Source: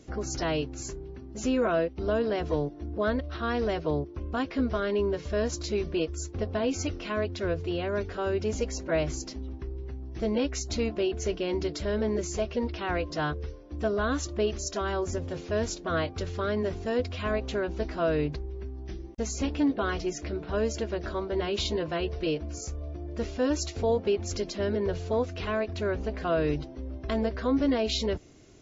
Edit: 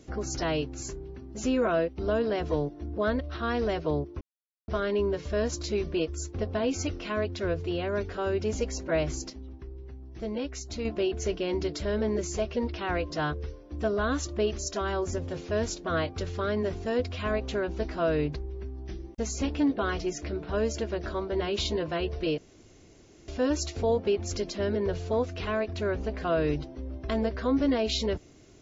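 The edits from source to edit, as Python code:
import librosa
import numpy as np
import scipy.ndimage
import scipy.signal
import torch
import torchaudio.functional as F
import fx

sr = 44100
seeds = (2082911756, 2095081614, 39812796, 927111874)

y = fx.edit(x, sr, fx.silence(start_s=4.21, length_s=0.47),
    fx.clip_gain(start_s=9.3, length_s=1.55, db=-5.5),
    fx.room_tone_fill(start_s=22.38, length_s=0.9), tone=tone)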